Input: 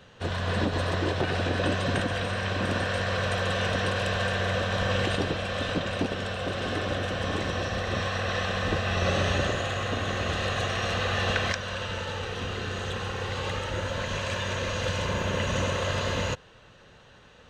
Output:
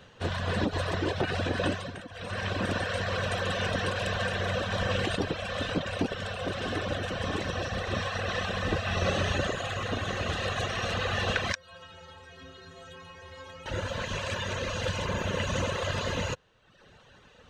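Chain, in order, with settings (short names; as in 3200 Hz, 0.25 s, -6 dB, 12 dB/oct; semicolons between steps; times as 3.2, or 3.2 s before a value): reverb removal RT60 0.9 s; 1.67–2.39 dip -12.5 dB, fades 0.25 s; 11.55–13.66 metallic resonator 79 Hz, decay 0.74 s, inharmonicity 0.03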